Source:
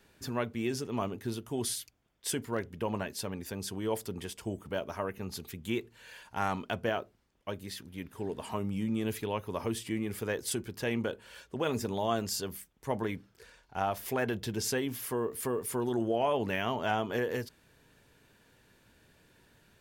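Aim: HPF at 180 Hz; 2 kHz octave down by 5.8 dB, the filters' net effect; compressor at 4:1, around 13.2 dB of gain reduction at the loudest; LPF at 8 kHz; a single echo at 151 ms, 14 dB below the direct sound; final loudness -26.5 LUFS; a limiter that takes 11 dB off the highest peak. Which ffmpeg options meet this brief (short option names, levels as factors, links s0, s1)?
-af "highpass=180,lowpass=8000,equalizer=f=2000:t=o:g=-8,acompressor=threshold=0.00794:ratio=4,alimiter=level_in=5.01:limit=0.0631:level=0:latency=1,volume=0.2,aecho=1:1:151:0.2,volume=12.6"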